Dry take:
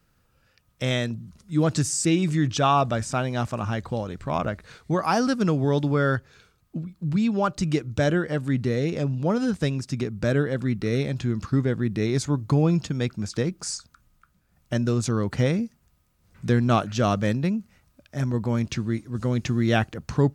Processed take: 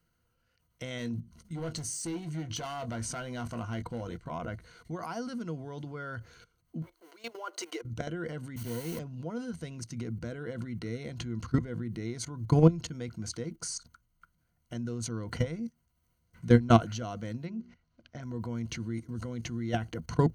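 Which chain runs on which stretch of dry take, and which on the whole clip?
0:00.98–0:04.19: notch filter 7,000 Hz, Q 24 + gain into a clipping stage and back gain 21.5 dB + double-tracking delay 21 ms −11.5 dB
0:06.82–0:07.82: mu-law and A-law mismatch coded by mu + elliptic high-pass filter 370 Hz, stop band 60 dB
0:08.56–0:08.99: lower of the sound and its delayed copy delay 0.33 ms + noise that follows the level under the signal 10 dB + multiband upward and downward expander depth 70%
0:17.45–0:18.23: low-pass filter 5,500 Hz 24 dB per octave + mains-hum notches 60/120/180/240/300/360/420 Hz
whole clip: output level in coarse steps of 19 dB; EQ curve with evenly spaced ripples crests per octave 1.9, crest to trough 10 dB

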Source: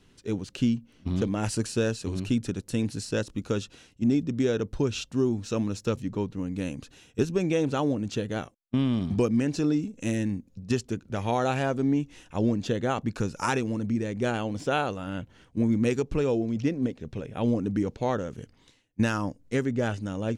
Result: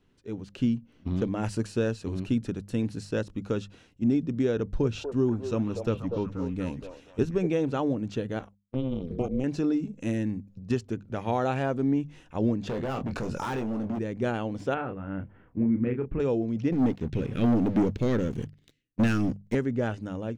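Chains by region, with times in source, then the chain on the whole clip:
0:04.56–0:07.47: low-shelf EQ 64 Hz +9.5 dB + echo through a band-pass that steps 241 ms, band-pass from 590 Hz, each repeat 0.7 octaves, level −2.5 dB
0:08.39–0:09.44: flanger swept by the level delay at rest 10.1 ms, full sweep at −22.5 dBFS + amplitude modulation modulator 260 Hz, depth 80%
0:12.67–0:13.99: gain into a clipping stage and back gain 29 dB + double-tracking delay 23 ms −7.5 dB + envelope flattener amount 70%
0:14.74–0:16.20: low-pass filter 2,200 Hz 24 dB per octave + dynamic equaliser 740 Hz, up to −7 dB, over −39 dBFS, Q 0.71 + double-tracking delay 31 ms −7 dB
0:16.72–0:19.55: gain on one half-wave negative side −3 dB + Butterworth band-reject 850 Hz, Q 0.67 + leveller curve on the samples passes 3
whole clip: parametric band 9,600 Hz −10.5 dB 2.6 octaves; mains-hum notches 50/100/150/200 Hz; automatic gain control gain up to 6 dB; level −6.5 dB

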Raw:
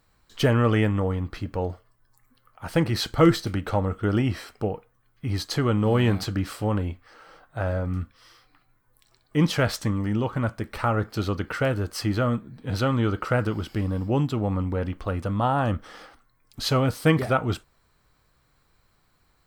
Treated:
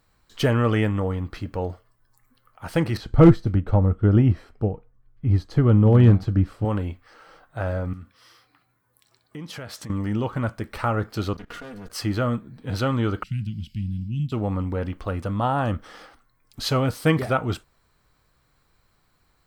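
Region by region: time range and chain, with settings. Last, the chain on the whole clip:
0:02.97–0:06.65: spectral tilt −3.5 dB per octave + hard clipping −4.5 dBFS + expander for the loud parts, over −23 dBFS
0:07.93–0:09.90: parametric band 11,000 Hz +3.5 dB 0.2 octaves + downward compressor 5 to 1, threshold −34 dBFS + high-pass filter 86 Hz
0:11.33–0:11.90: lower of the sound and its delayed copy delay 4.2 ms + output level in coarse steps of 19 dB
0:13.23–0:14.32: elliptic band-stop filter 200–2,700 Hz, stop band 50 dB + high-shelf EQ 3,600 Hz −11.5 dB
whole clip: no processing

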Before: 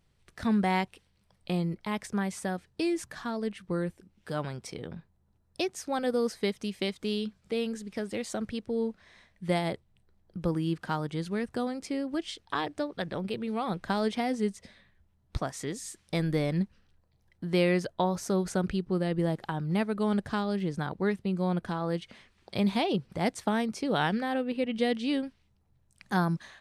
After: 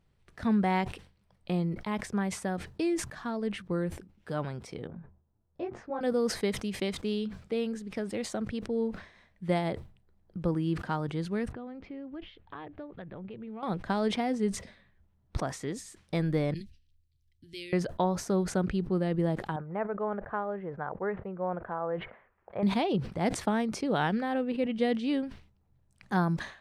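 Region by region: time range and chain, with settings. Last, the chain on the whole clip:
0:04.87–0:06.01: low-pass filter 1,400 Hz + micro pitch shift up and down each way 33 cents
0:11.52–0:13.63: low-shelf EQ 120 Hz +8.5 dB + downward compressor 2 to 1, threshold −47 dBFS + low-pass filter 3,200 Hz 24 dB per octave
0:16.54–0:17.73: Chebyshev band-stop filter 170–3,300 Hz + phaser with its sweep stopped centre 440 Hz, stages 4
0:19.56–0:22.63: low-pass filter 1,800 Hz 24 dB per octave + low shelf with overshoot 380 Hz −9.5 dB, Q 1.5
whole clip: high-shelf EQ 3,100 Hz −9 dB; level that may fall only so fast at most 120 dB per second

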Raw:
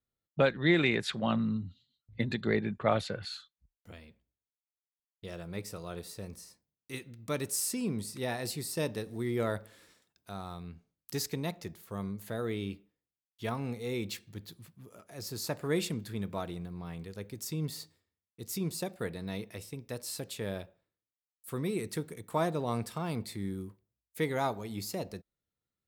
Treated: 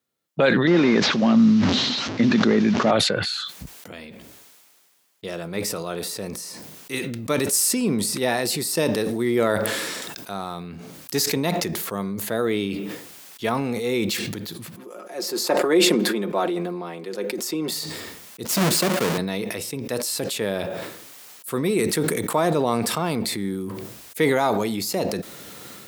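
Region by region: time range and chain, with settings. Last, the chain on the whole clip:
0:00.67–0:02.91: linear delta modulator 32 kbit/s, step −43 dBFS + parametric band 240 Hz +8 dB 0.62 octaves
0:14.76–0:17.72: high-pass filter 280 Hz 24 dB per octave + spectral tilt −2 dB per octave + comb filter 5.6 ms, depth 56%
0:18.45–0:19.18: each half-wave held at its own peak + high-pass filter 100 Hz 24 dB per octave + notch filter 770 Hz, Q 17
whole clip: high-pass filter 200 Hz 12 dB per octave; boost into a limiter +20.5 dB; level that may fall only so fast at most 25 dB per second; level −8.5 dB

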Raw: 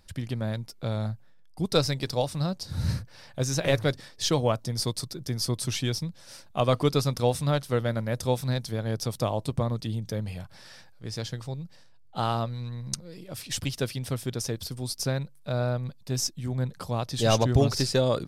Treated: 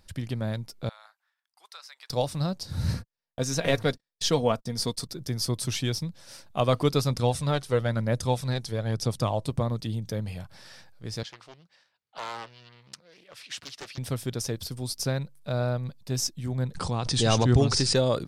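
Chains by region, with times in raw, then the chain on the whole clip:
0:00.89–0:02.10: high-pass filter 1,100 Hz 24 dB per octave + high-shelf EQ 2,200 Hz −10 dB + downward compressor 2.5 to 1, threshold −46 dBFS
0:02.94–0:05.09: high-shelf EQ 11,000 Hz −4 dB + comb filter 4.3 ms, depth 40% + noise gate −40 dBFS, range −44 dB
0:07.10–0:09.46: low-pass filter 11,000 Hz 24 dB per octave + phase shifter 1 Hz, delay 2.8 ms, feedback 34%
0:11.23–0:13.98: gain into a clipping stage and back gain 24.5 dB + resonant band-pass 2,100 Hz, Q 0.74 + highs frequency-modulated by the lows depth 0.9 ms
0:16.75–0:17.96: linear-phase brick-wall low-pass 10,000 Hz + parametric band 600 Hz −8.5 dB 0.24 octaves + background raised ahead of every attack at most 42 dB per second
whole clip: no processing

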